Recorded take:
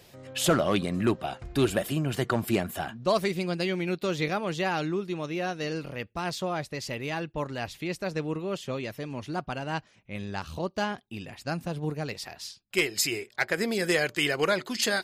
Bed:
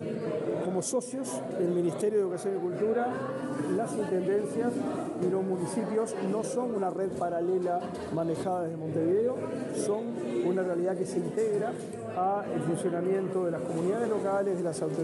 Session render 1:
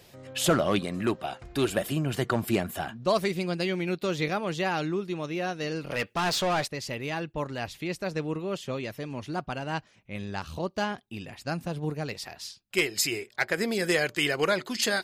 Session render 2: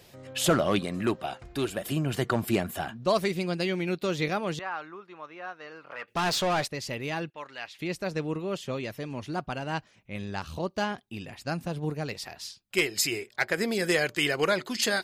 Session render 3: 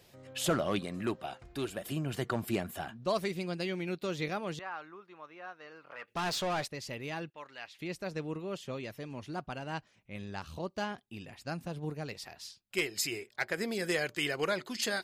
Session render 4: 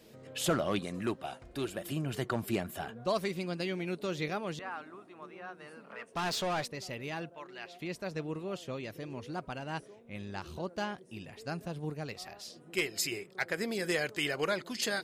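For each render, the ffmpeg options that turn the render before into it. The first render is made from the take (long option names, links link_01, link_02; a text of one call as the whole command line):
ffmpeg -i in.wav -filter_complex "[0:a]asettb=1/sr,asplit=3[link_01][link_02][link_03];[link_01]atrim=end=0.794[link_04];[link_02]atrim=start=0.79:end=1.77,asetpts=PTS-STARTPTS,afade=type=in:duration=0.004:curve=qsin,afade=type=out:start_time=0.976:duration=0.004:curve=qsin,lowshelf=frequency=240:gain=-6[link_05];[link_03]atrim=start=1.766[link_06];[link_04][link_05]acrossfade=duration=0.004:curve1=hsin:curve2=qsin[link_07];[link_07][link_06]acrossfade=duration=0.004:curve1=qsin:curve2=hsin,asettb=1/sr,asplit=3[link_08][link_09][link_10];[link_08]atrim=end=5.904[link_11];[link_09]atrim=start=5.9:end=6.68,asetpts=PTS-STARTPTS,afade=type=in:duration=0.004:curve=qsin,afade=type=out:start_time=0.776:duration=0.004:curve=qsin,asplit=2[link_12][link_13];[link_13]highpass=frequency=720:poles=1,volume=20dB,asoftclip=type=tanh:threshold=-19dB[link_14];[link_12][link_14]amix=inputs=2:normalize=0,lowpass=frequency=7900:poles=1,volume=-6dB[link_15];[link_10]atrim=start=6.676[link_16];[link_11][link_15]acrossfade=duration=0.004:curve1=hsin:curve2=qsin[link_17];[link_17][link_16]acrossfade=duration=0.004:curve1=qsin:curve2=hsin" out.wav
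ffmpeg -i in.wav -filter_complex "[0:a]asettb=1/sr,asplit=3[link_01][link_02][link_03];[link_01]atrim=end=4.594[link_04];[link_02]atrim=start=4.59:end=6.08,asetpts=PTS-STARTPTS,afade=type=in:duration=0.004:curve=qsin,afade=type=out:start_time=1.486:duration=0.004:curve=qsin,bandpass=frequency=1200:width_type=q:width=2[link_05];[link_03]atrim=start=6.076[link_06];[link_04][link_05]acrossfade=duration=0.004:curve1=hsin:curve2=qsin[link_07];[link_07][link_06]acrossfade=duration=0.004:curve1=qsin:curve2=hsin,asettb=1/sr,asplit=3[link_08][link_09][link_10];[link_08]atrim=end=7.304[link_11];[link_09]atrim=start=7.3:end=7.79,asetpts=PTS-STARTPTS,afade=type=in:duration=0.004:curve=qsin,afade=type=out:start_time=0.486:duration=0.004:curve=qsin,bandpass=frequency=2300:width_type=q:width=0.81[link_12];[link_10]atrim=start=7.786[link_13];[link_11][link_12]acrossfade=duration=0.004:curve1=hsin:curve2=qsin[link_14];[link_14][link_13]acrossfade=duration=0.004:curve1=qsin:curve2=hsin,asplit=2[link_15][link_16];[link_15]atrim=end=1.85,asetpts=PTS-STARTPTS,afade=type=out:start_time=1.32:duration=0.53:silence=0.446684[link_17];[link_16]atrim=start=1.85,asetpts=PTS-STARTPTS,afade=type=in:duration=0.004:curve=hsin:silence=0.446684[link_18];[link_17][link_18]concat=n=2:v=0:a=1" out.wav
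ffmpeg -i in.wav -af "volume=-6.5dB" out.wav
ffmpeg -i in.wav -i bed.wav -filter_complex "[1:a]volume=-25dB[link_01];[0:a][link_01]amix=inputs=2:normalize=0" out.wav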